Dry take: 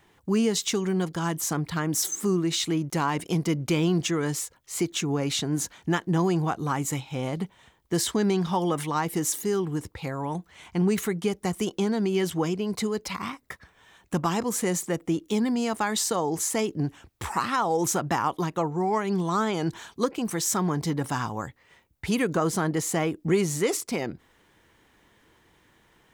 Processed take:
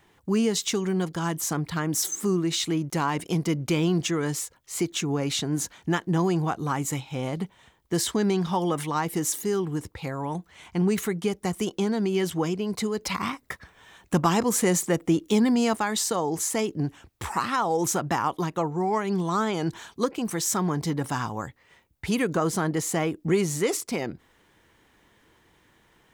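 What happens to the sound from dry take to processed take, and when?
13.01–15.76 s: gain +4 dB

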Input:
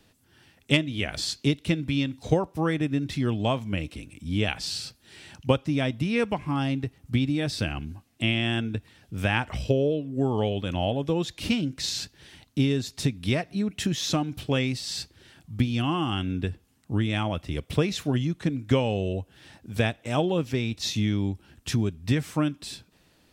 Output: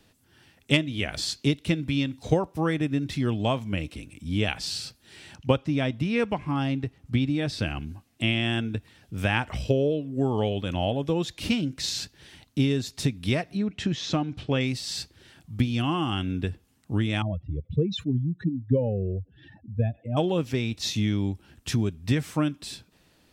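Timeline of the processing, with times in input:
5.35–7.66 s: treble shelf 7.9 kHz -10 dB
13.57–14.61 s: distance through air 110 m
17.22–20.17 s: spectral contrast enhancement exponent 2.6

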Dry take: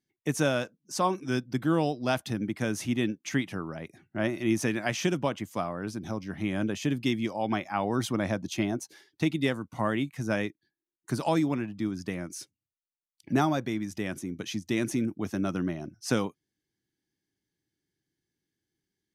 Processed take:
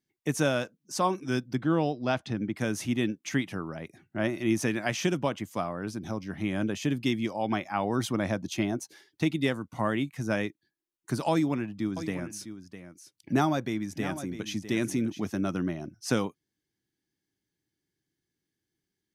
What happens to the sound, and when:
1.55–2.56 s: distance through air 110 m
11.31–15.27 s: delay 654 ms -11.5 dB

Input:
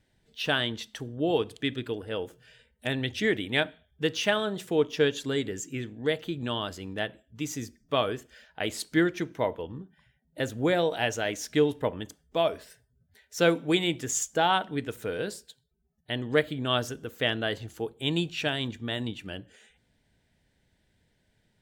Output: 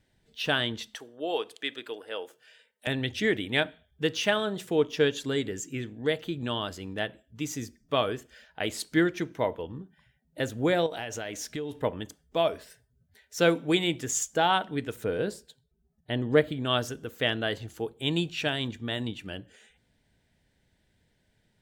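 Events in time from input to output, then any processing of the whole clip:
0.95–2.87 s: high-pass 520 Hz
10.86–11.76 s: compression, threshold -31 dBFS
15.04–16.52 s: tilt shelf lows +4 dB, about 1.2 kHz

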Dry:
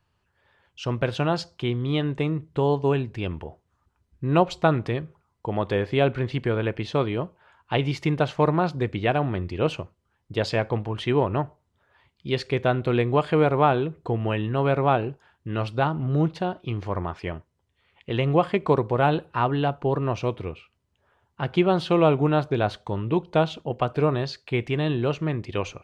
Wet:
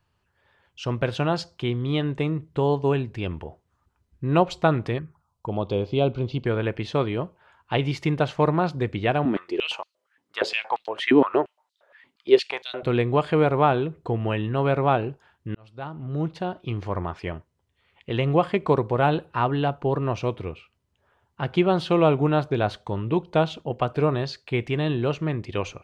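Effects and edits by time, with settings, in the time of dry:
4.98–6.46 s: touch-sensitive phaser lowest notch 290 Hz, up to 1.8 kHz, full sweep at -25 dBFS
9.25–12.83 s: step-sequenced high-pass 8.6 Hz 260–4100 Hz
15.55–16.68 s: fade in

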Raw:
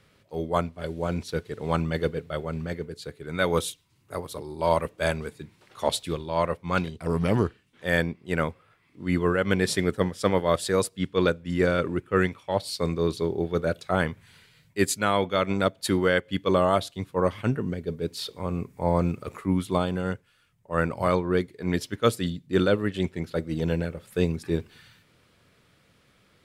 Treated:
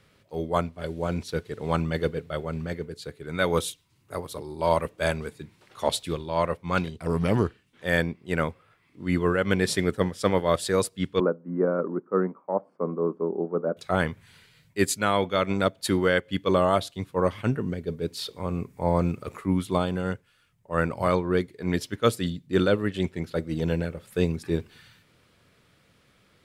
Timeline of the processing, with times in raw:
11.20–13.77 s: elliptic band-pass 190–1200 Hz, stop band 50 dB

